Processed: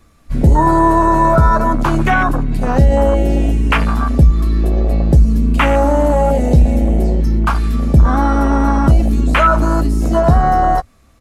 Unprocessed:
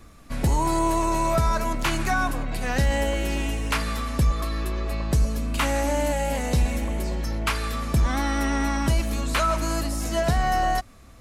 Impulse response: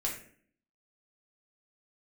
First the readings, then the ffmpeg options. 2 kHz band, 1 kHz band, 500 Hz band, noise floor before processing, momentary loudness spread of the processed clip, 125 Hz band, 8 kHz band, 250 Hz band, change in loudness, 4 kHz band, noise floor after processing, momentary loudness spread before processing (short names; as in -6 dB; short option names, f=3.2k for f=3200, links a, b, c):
+7.5 dB, +11.0 dB, +11.5 dB, -47 dBFS, 5 LU, +12.5 dB, -3.5 dB, +12.5 dB, +11.5 dB, +0.5 dB, -49 dBFS, 5 LU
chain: -filter_complex "[0:a]afwtdn=0.0562,asplit=2[a][b];[b]alimiter=limit=-21dB:level=0:latency=1,volume=1.5dB[c];[a][c]amix=inputs=2:normalize=0,asplit=2[d][e];[e]adelay=13,volume=-12dB[f];[d][f]amix=inputs=2:normalize=0,volume=7.5dB"